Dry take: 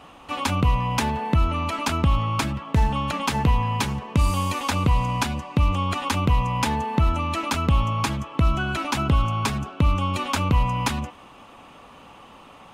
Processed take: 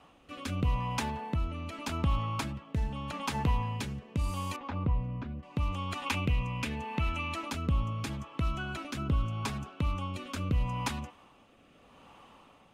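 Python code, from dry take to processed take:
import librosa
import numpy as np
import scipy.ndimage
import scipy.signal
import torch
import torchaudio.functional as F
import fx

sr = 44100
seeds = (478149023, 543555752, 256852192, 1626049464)

y = fx.peak_eq(x, sr, hz=2500.0, db=9.5, octaves=0.62, at=(6.06, 7.34))
y = fx.rotary(y, sr, hz=0.8)
y = fx.spacing_loss(y, sr, db_at_10k=45, at=(4.56, 5.43))
y = y * librosa.db_to_amplitude(-8.5)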